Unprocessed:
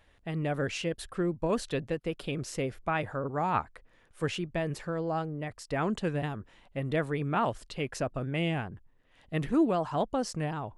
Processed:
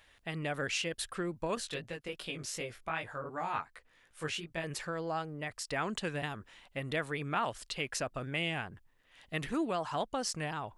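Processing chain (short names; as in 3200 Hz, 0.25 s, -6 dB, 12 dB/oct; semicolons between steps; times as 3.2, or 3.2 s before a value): tilt shelf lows -6.5 dB, about 930 Hz; compressor 1.5:1, threshold -35 dBFS, peak gain reduction 5 dB; 1.55–4.64 chorus 2.7 Hz, delay 17 ms, depth 3.6 ms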